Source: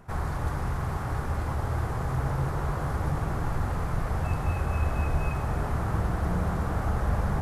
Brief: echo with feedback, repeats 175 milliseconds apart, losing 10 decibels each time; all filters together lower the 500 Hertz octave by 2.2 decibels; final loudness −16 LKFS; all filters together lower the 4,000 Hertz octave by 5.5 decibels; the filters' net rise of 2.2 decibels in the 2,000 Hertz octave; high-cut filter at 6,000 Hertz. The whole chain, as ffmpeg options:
ffmpeg -i in.wav -af "lowpass=6000,equalizer=frequency=500:width_type=o:gain=-3,equalizer=frequency=2000:width_type=o:gain=5,equalizer=frequency=4000:width_type=o:gain=-8.5,aecho=1:1:175|350|525|700:0.316|0.101|0.0324|0.0104,volume=13.5dB" out.wav

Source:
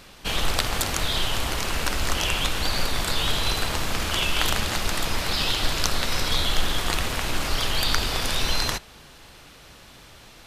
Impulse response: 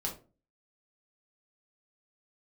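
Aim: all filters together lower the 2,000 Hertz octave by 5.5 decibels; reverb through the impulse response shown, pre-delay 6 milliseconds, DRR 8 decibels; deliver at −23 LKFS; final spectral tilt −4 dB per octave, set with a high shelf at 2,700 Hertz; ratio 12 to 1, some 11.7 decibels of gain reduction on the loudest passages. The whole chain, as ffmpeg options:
-filter_complex "[0:a]equalizer=frequency=2000:width_type=o:gain=-5.5,highshelf=frequency=2700:gain=-4,acompressor=threshold=-26dB:ratio=12,asplit=2[link_01][link_02];[1:a]atrim=start_sample=2205,adelay=6[link_03];[link_02][link_03]afir=irnorm=-1:irlink=0,volume=-10dB[link_04];[link_01][link_04]amix=inputs=2:normalize=0,volume=10dB"

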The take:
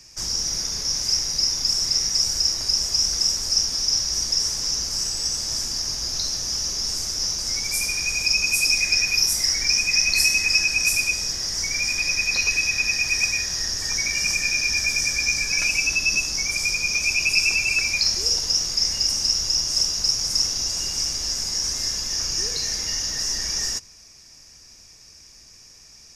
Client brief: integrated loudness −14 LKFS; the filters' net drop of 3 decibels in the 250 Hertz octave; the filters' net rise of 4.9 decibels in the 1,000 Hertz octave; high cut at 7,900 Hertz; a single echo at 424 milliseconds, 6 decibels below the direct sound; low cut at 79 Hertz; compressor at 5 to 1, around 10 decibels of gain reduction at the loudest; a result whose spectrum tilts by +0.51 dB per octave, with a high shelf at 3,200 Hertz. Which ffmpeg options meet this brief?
ffmpeg -i in.wav -af "highpass=79,lowpass=7900,equalizer=frequency=250:width_type=o:gain=-4.5,equalizer=frequency=1000:width_type=o:gain=7,highshelf=frequency=3200:gain=-6,acompressor=threshold=-31dB:ratio=5,aecho=1:1:424:0.501,volume=16.5dB" out.wav

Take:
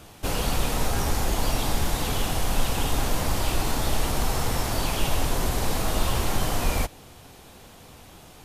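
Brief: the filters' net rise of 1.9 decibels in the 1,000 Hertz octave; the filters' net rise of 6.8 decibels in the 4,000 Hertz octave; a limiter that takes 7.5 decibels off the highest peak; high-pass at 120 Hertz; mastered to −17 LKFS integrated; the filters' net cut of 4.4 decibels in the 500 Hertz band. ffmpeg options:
ffmpeg -i in.wav -af "highpass=120,equalizer=frequency=500:width_type=o:gain=-7.5,equalizer=frequency=1000:width_type=o:gain=4.5,equalizer=frequency=4000:width_type=o:gain=8.5,volume=10.5dB,alimiter=limit=-8.5dB:level=0:latency=1" out.wav

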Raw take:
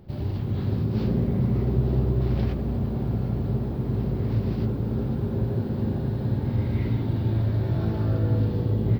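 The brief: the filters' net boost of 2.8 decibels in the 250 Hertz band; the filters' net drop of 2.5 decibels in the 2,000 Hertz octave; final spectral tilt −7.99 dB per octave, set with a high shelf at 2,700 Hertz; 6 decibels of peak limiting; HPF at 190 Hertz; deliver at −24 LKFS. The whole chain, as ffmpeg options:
ffmpeg -i in.wav -af "highpass=190,equalizer=frequency=250:width_type=o:gain=6,equalizer=frequency=2000:width_type=o:gain=-6,highshelf=frequency=2700:gain=6.5,volume=5dB,alimiter=limit=-15dB:level=0:latency=1" out.wav

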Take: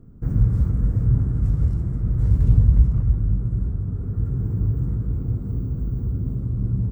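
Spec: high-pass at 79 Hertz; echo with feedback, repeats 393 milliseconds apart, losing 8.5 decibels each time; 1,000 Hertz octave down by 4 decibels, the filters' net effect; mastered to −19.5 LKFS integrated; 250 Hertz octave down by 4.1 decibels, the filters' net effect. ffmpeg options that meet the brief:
ffmpeg -i in.wav -af "highpass=79,equalizer=frequency=250:width_type=o:gain=-7,equalizer=frequency=1000:width_type=o:gain=-5,aecho=1:1:393|786|1179|1572:0.376|0.143|0.0543|0.0206,volume=6dB" out.wav

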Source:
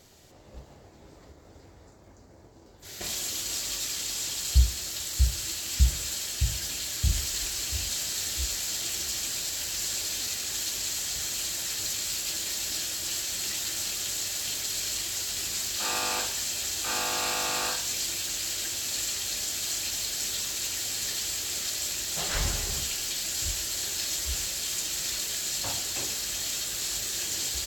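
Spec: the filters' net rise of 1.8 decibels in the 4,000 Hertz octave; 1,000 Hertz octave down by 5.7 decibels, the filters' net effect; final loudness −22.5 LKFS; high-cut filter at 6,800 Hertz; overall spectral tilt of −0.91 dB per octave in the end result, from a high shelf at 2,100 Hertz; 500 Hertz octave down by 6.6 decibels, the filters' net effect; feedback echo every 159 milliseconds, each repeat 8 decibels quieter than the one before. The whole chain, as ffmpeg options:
ffmpeg -i in.wav -af "lowpass=6800,equalizer=frequency=500:width_type=o:gain=-7,equalizer=frequency=1000:width_type=o:gain=-5,highshelf=frequency=2100:gain=-3,equalizer=frequency=4000:width_type=o:gain=6,aecho=1:1:159|318|477|636|795:0.398|0.159|0.0637|0.0255|0.0102,volume=6.5dB" out.wav

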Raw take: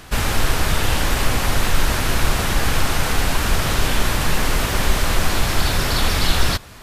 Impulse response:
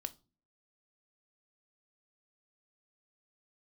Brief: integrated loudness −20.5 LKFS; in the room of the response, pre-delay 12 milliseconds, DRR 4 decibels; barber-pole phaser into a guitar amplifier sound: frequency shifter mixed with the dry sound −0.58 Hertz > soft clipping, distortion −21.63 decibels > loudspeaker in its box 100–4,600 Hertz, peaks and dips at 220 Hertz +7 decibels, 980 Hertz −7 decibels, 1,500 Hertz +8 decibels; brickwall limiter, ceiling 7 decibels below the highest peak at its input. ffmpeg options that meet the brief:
-filter_complex "[0:a]alimiter=limit=-10dB:level=0:latency=1,asplit=2[link_01][link_02];[1:a]atrim=start_sample=2205,adelay=12[link_03];[link_02][link_03]afir=irnorm=-1:irlink=0,volume=-1.5dB[link_04];[link_01][link_04]amix=inputs=2:normalize=0,asplit=2[link_05][link_06];[link_06]afreqshift=-0.58[link_07];[link_05][link_07]amix=inputs=2:normalize=1,asoftclip=threshold=-10.5dB,highpass=100,equalizer=frequency=220:width_type=q:width=4:gain=7,equalizer=frequency=980:width_type=q:width=4:gain=-7,equalizer=frequency=1500:width_type=q:width=4:gain=8,lowpass=frequency=4600:width=0.5412,lowpass=frequency=4600:width=1.3066,volume=4.5dB"

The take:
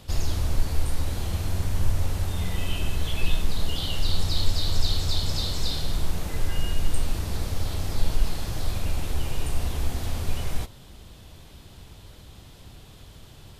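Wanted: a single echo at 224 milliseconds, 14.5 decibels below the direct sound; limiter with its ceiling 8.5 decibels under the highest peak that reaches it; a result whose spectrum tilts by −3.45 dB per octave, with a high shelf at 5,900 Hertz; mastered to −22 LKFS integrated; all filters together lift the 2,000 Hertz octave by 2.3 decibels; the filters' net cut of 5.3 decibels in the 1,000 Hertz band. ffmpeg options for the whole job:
ffmpeg -i in.wav -af "equalizer=frequency=1000:width_type=o:gain=-8.5,equalizer=frequency=2000:width_type=o:gain=4,highshelf=frequency=5900:gain=7.5,alimiter=limit=-15dB:level=0:latency=1,aecho=1:1:224:0.188,volume=7.5dB" out.wav

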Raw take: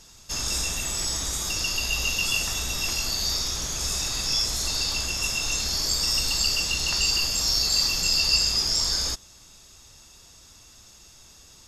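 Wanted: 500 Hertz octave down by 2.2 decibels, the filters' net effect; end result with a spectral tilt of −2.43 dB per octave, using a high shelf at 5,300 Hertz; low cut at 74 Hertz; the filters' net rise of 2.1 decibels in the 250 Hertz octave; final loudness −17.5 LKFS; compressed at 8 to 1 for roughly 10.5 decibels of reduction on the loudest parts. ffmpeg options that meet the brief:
ffmpeg -i in.wav -af "highpass=74,equalizer=frequency=250:width_type=o:gain=4,equalizer=frequency=500:width_type=o:gain=-4,highshelf=frequency=5300:gain=-7,acompressor=threshold=-33dB:ratio=8,volume=16.5dB" out.wav

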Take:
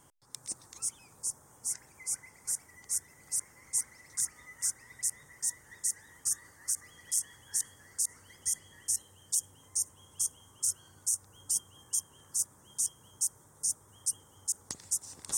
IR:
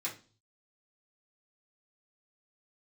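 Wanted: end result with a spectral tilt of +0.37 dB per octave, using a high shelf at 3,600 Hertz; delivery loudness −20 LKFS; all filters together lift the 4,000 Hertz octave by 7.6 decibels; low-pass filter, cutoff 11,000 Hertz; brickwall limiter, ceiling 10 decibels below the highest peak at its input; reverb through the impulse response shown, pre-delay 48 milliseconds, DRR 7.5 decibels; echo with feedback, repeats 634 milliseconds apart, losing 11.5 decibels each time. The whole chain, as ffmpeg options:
-filter_complex "[0:a]lowpass=11000,highshelf=frequency=3600:gain=7,equalizer=frequency=4000:width_type=o:gain=5,alimiter=limit=-18dB:level=0:latency=1,aecho=1:1:634|1268|1902:0.266|0.0718|0.0194,asplit=2[link_01][link_02];[1:a]atrim=start_sample=2205,adelay=48[link_03];[link_02][link_03]afir=irnorm=-1:irlink=0,volume=-9.5dB[link_04];[link_01][link_04]amix=inputs=2:normalize=0,volume=13dB"

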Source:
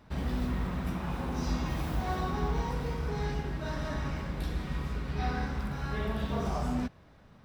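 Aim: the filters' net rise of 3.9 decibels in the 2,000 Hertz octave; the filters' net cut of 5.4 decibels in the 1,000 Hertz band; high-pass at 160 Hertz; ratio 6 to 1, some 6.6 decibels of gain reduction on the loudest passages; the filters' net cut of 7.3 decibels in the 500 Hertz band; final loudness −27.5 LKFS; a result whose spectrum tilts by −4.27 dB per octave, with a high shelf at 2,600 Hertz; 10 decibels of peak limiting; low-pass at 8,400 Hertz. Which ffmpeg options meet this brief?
ffmpeg -i in.wav -af "highpass=160,lowpass=8400,equalizer=frequency=500:width_type=o:gain=-8.5,equalizer=frequency=1000:width_type=o:gain=-6.5,equalizer=frequency=2000:width_type=o:gain=4.5,highshelf=frequency=2600:gain=8,acompressor=threshold=-39dB:ratio=6,volume=20dB,alimiter=limit=-19.5dB:level=0:latency=1" out.wav

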